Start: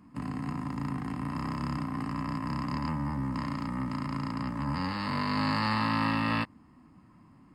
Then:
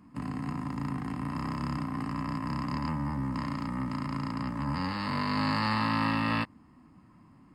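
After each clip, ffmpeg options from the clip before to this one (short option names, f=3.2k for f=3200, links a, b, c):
-af anull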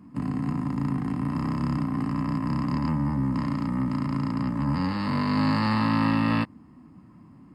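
-af "equalizer=f=200:w=0.38:g=7.5"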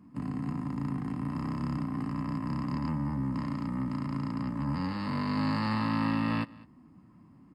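-af "aecho=1:1:205:0.075,volume=-6dB"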